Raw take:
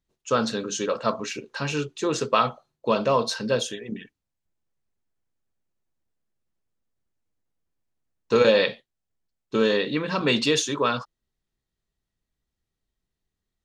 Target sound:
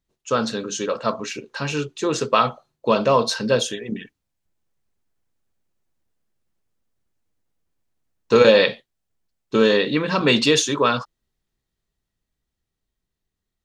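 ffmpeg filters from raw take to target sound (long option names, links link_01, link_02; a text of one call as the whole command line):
ffmpeg -i in.wav -af "dynaudnorm=framelen=290:gausssize=17:maxgain=5dB,volume=1.5dB" out.wav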